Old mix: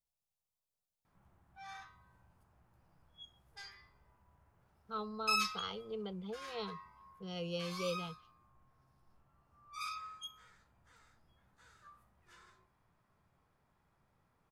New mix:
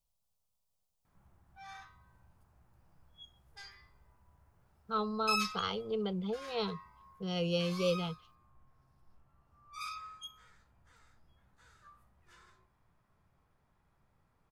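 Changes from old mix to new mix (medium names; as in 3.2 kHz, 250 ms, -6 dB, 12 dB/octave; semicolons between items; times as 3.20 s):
speech +7.0 dB; master: add bass shelf 74 Hz +8 dB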